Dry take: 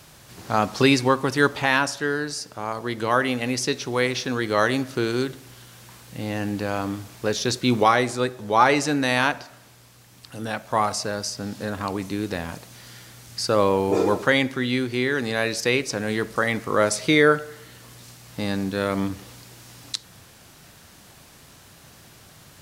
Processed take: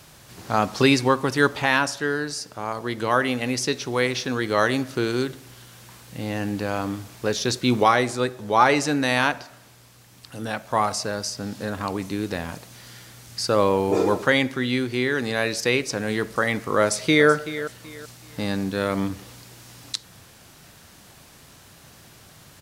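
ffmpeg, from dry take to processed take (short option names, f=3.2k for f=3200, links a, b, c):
-filter_complex "[0:a]asplit=2[a][b];[b]afade=t=in:st=16.81:d=0.01,afade=t=out:st=17.29:d=0.01,aecho=0:1:380|760|1140:0.211349|0.0634047|0.0190214[c];[a][c]amix=inputs=2:normalize=0"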